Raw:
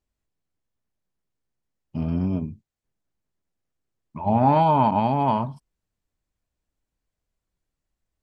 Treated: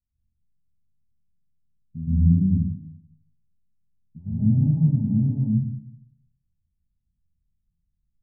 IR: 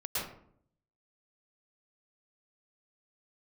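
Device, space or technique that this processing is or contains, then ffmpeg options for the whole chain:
club heard from the street: -filter_complex "[0:a]alimiter=limit=-11.5dB:level=0:latency=1,lowpass=frequency=200:width=0.5412,lowpass=frequency=200:width=1.3066[link_01];[1:a]atrim=start_sample=2205[link_02];[link_01][link_02]afir=irnorm=-1:irlink=0,volume=1.5dB"

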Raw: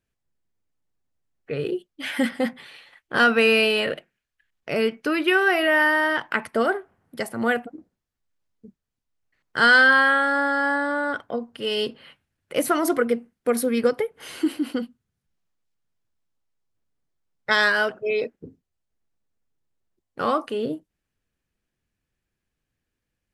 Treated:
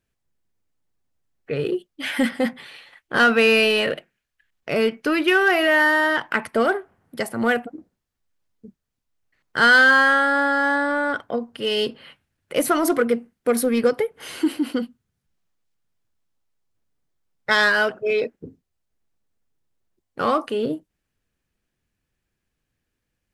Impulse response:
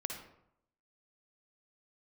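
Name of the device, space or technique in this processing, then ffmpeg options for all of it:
parallel distortion: -filter_complex "[0:a]asplit=2[link_01][link_02];[link_02]asoftclip=type=hard:threshold=-20.5dB,volume=-8dB[link_03];[link_01][link_03]amix=inputs=2:normalize=0"

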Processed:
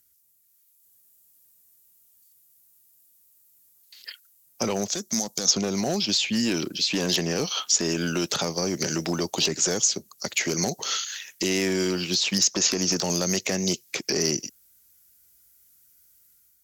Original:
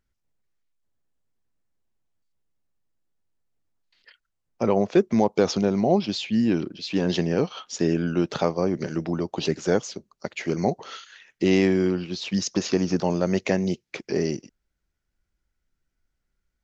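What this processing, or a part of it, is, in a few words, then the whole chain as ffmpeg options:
FM broadcast chain: -filter_complex "[0:a]highpass=68,dynaudnorm=framelen=480:gausssize=3:maxgain=5.5dB,acrossover=split=370|2500[link_01][link_02][link_03];[link_01]acompressor=threshold=-25dB:ratio=4[link_04];[link_02]acompressor=threshold=-26dB:ratio=4[link_05];[link_03]acompressor=threshold=-39dB:ratio=4[link_06];[link_04][link_05][link_06]amix=inputs=3:normalize=0,aemphasis=mode=production:type=75fm,alimiter=limit=-15.5dB:level=0:latency=1:release=33,asoftclip=type=hard:threshold=-18.5dB,lowpass=frequency=15000:width=0.5412,lowpass=frequency=15000:width=1.3066,aemphasis=mode=production:type=75fm,asettb=1/sr,asplit=3[link_07][link_08][link_09];[link_07]atrim=end=4.884[link_10];[link_08]atrim=start=4.88:end=5.51,asetpts=PTS-STARTPTS,afade=type=in:duration=0.004:curve=qsin,afade=type=out:start_time=0.626:duration=0.004:curve=qsin,equalizer=frequency=100:width_type=o:width=0.67:gain=-12,equalizer=frequency=400:width_type=o:width=0.67:gain=-11,equalizer=frequency=1000:width_type=o:width=0.67:gain=-6,equalizer=frequency=2500:width_type=o:width=0.67:gain=-10,equalizer=frequency=6300:width_type=o:width=0.67:gain=4[link_11];[link_09]atrim=start=5.506[link_12];[link_10][link_11]acrossfade=duration=0.004:curve1=hsin:curve2=qsin[link_13];[link_13][link_12]acrossfade=duration=0.004:curve1=qsin:curve2=hsin"

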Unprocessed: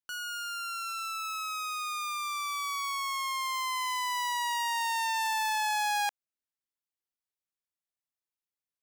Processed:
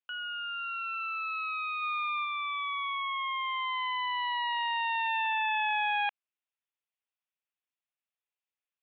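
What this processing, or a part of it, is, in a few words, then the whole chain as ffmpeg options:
musical greeting card: -filter_complex "[0:a]aresample=8000,aresample=44100,highpass=550,equalizer=frequency=2600:width_type=o:width=0.3:gain=6,asplit=3[link_01][link_02][link_03];[link_01]afade=type=out:start_time=1.81:duration=0.02[link_04];[link_02]lowshelf=frequency=740:width_type=q:width=1.5:gain=-12.5,afade=type=in:start_time=1.81:duration=0.02,afade=type=out:start_time=2.24:duration=0.02[link_05];[link_03]afade=type=in:start_time=2.24:duration=0.02[link_06];[link_04][link_05][link_06]amix=inputs=3:normalize=0"

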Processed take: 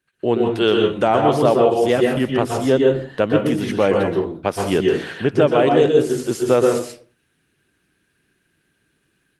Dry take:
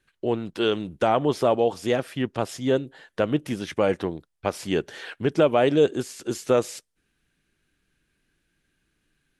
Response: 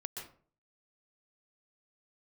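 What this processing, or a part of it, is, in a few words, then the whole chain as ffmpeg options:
far-field microphone of a smart speaker: -filter_complex "[1:a]atrim=start_sample=2205[link_01];[0:a][link_01]afir=irnorm=-1:irlink=0,highpass=82,dynaudnorm=framelen=120:gausssize=3:maxgain=10dB" -ar 48000 -c:a libopus -b:a 32k

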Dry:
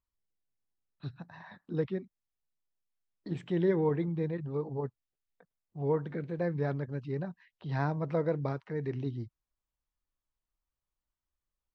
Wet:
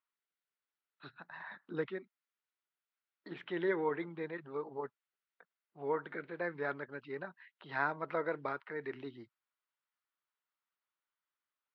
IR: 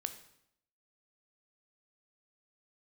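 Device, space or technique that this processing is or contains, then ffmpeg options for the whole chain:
phone earpiece: -filter_complex "[0:a]highpass=490,equalizer=frequency=510:width_type=q:width=4:gain=-5,equalizer=frequency=730:width_type=q:width=4:gain=-4,equalizer=frequency=1400:width_type=q:width=4:gain=7,equalizer=frequency=2000:width_type=q:width=4:gain=3,lowpass=frequency=3900:width=0.5412,lowpass=frequency=3900:width=1.3066,asettb=1/sr,asplit=3[link_01][link_02][link_03];[link_01]atrim=end=1.304[link_04];[link_02]atrim=start=1.3:end=1.9,asetpts=PTS-STARTPTS,afade=type=in:duration=0.004:curve=qsin,afade=type=out:start_time=0.596:duration=0.004:curve=qsin,equalizer=frequency=70:width=0.34:gain=8[link_05];[link_03]atrim=start=1.896[link_06];[link_04][link_05]acrossfade=duration=0.004:curve1=hsin:curve2=qsin[link_07];[link_07][link_06]acrossfade=duration=0.004:curve1=qsin:curve2=hsin,volume=1.5dB"

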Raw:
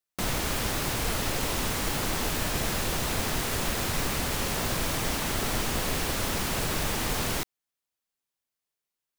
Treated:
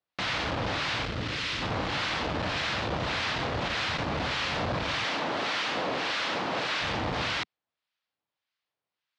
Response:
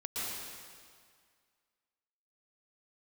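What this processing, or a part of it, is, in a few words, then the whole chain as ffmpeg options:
guitar amplifier with harmonic tremolo: -filter_complex "[0:a]asettb=1/sr,asplit=3[link_01][link_02][link_03];[link_01]atrim=end=1.054[link_04];[link_02]atrim=start=1.05:end=1.62,asetpts=PTS-STARTPTS,afade=type=in:duration=0.004:curve=qsin,afade=type=out:start_time=0.566:duration=0.004:curve=qsin,equalizer=frequency=760:width_type=o:width=1.2:gain=-11.5[link_05];[link_03]atrim=start=1.616[link_06];[link_04][link_05]acrossfade=duration=0.004:curve1=hsin:curve2=qsin[link_07];[link_07][link_06]acrossfade=duration=0.004:curve1=qsin:curve2=hsin,asettb=1/sr,asplit=3[link_08][link_09][link_10];[link_08]atrim=end=5.044[link_11];[link_09]atrim=start=5.04:end=6.81,asetpts=PTS-STARTPTS,afade=type=in:duration=0.004:curve=qsin,afade=type=out:start_time=1.766:duration=0.004:curve=qsin,highpass=250[link_12];[link_10]atrim=start=6.806[link_13];[link_11][link_12]acrossfade=duration=0.004:curve1=hsin:curve2=qsin[link_14];[link_14][link_13]acrossfade=duration=0.004:curve1=qsin:curve2=hsin,acrossover=split=1100[link_15][link_16];[link_15]aeval=exprs='val(0)*(1-0.7/2+0.7/2*cos(2*PI*1.7*n/s))':channel_layout=same[link_17];[link_16]aeval=exprs='val(0)*(1-0.7/2-0.7/2*cos(2*PI*1.7*n/s))':channel_layout=same[link_18];[link_17][link_18]amix=inputs=2:normalize=0,asoftclip=type=tanh:threshold=-30dB,highpass=95,equalizer=frequency=160:width_type=q:width=4:gain=-4,equalizer=frequency=230:width_type=q:width=4:gain=-6,equalizer=frequency=390:width_type=q:width=4:gain=-7,lowpass=frequency=4300:width=0.5412,lowpass=frequency=4300:width=1.3066,volume=9dB"

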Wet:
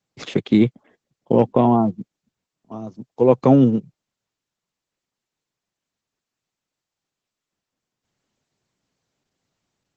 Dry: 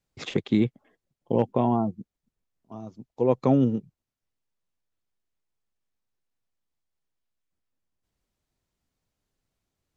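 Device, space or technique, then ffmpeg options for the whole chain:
video call: -af "highpass=frequency=110:width=0.5412,highpass=frequency=110:width=1.3066,dynaudnorm=framelen=310:gausssize=3:maxgain=4dB,volume=4dB" -ar 48000 -c:a libopus -b:a 12k

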